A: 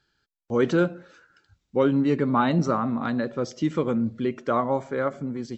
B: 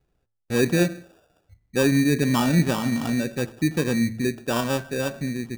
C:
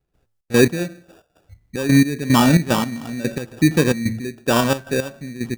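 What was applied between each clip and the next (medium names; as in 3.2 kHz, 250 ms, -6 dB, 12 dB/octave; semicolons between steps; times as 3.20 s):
tilt EQ -3 dB/octave; sample-and-hold 21×; de-hum 111.3 Hz, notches 18; trim -3.5 dB
trance gate ".xx.x...x.xxx.x." 111 bpm -12 dB; trim +7.5 dB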